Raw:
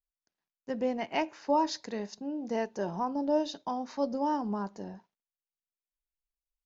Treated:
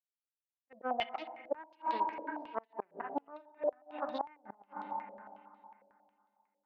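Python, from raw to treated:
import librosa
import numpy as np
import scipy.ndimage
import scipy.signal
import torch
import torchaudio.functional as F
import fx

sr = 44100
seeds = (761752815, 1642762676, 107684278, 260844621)

p1 = fx.bin_expand(x, sr, power=2.0)
p2 = p1 + fx.echo_single(p1, sr, ms=689, db=-13.5, dry=0)
p3 = fx.auto_swell(p2, sr, attack_ms=128.0)
p4 = fx.power_curve(p3, sr, exponent=2.0)
p5 = 10.0 ** (-29.0 / 20.0) * np.tanh(p4 / 10.0 ** (-29.0 / 20.0))
p6 = p4 + (p5 * librosa.db_to_amplitude(-6.0))
p7 = fx.rev_spring(p6, sr, rt60_s=2.6, pass_ms=(30, 57), chirp_ms=20, drr_db=9.5)
p8 = fx.cheby_harmonics(p7, sr, harmonics=(6,), levels_db=(-22,), full_scale_db=-17.0)
p9 = fx.peak_eq(p8, sr, hz=800.0, db=8.0, octaves=0.64)
p10 = fx.gate_flip(p9, sr, shuts_db=-32.0, range_db=-33)
p11 = scipy.signal.sosfilt(scipy.signal.butter(2, 270.0, 'highpass', fs=sr, output='sos'), p10)
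p12 = fx.filter_held_lowpass(p11, sr, hz=11.0, low_hz=530.0, high_hz=3900.0)
y = p12 * librosa.db_to_amplitude(9.0)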